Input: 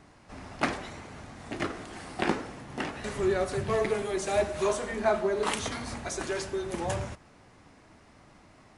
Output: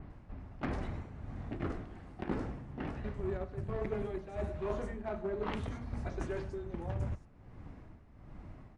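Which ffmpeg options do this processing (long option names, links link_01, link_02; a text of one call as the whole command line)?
ffmpeg -i in.wav -filter_complex "[0:a]aemphasis=mode=reproduction:type=riaa,acrossover=split=4900[link_01][link_02];[link_02]adelay=100[link_03];[link_01][link_03]amix=inputs=2:normalize=0,asplit=2[link_04][link_05];[link_05]acrusher=bits=2:mix=0:aa=0.5,volume=-8.5dB[link_06];[link_04][link_06]amix=inputs=2:normalize=0,tremolo=f=1.3:d=0.68,areverse,acompressor=threshold=-32dB:ratio=5,areverse,adynamicequalizer=threshold=0.00141:dfrequency=4100:dqfactor=0.7:tfrequency=4100:tqfactor=0.7:attack=5:release=100:ratio=0.375:range=2:mode=cutabove:tftype=highshelf,volume=-2dB" out.wav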